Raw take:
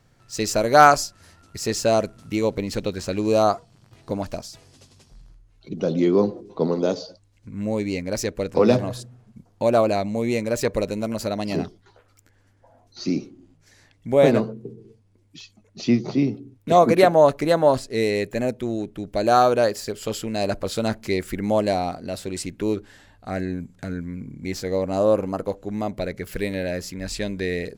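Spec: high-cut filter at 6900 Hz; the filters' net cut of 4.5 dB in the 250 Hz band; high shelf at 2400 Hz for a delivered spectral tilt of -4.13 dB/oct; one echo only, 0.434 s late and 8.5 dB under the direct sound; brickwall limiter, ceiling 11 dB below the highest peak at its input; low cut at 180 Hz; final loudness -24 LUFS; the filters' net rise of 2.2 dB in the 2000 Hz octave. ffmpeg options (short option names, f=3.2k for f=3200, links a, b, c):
-af "highpass=180,lowpass=6.9k,equalizer=f=250:t=o:g=-4.5,equalizer=f=2k:t=o:g=6,highshelf=f=2.4k:g=-6,alimiter=limit=-9.5dB:level=0:latency=1,aecho=1:1:434:0.376,volume=1.5dB"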